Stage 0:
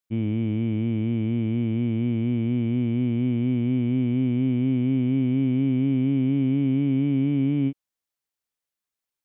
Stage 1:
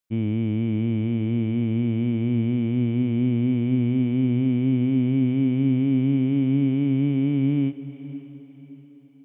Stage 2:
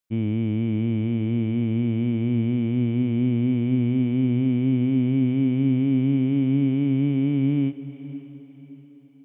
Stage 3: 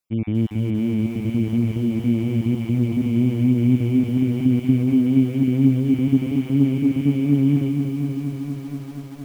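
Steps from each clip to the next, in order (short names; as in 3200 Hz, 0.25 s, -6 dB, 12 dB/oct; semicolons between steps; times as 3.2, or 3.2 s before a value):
diffused feedback echo 0.554 s, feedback 41%, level -14.5 dB; gain +1 dB
nothing audible
random spectral dropouts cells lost 25%; lo-fi delay 0.237 s, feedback 80%, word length 8-bit, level -7.5 dB; gain +2 dB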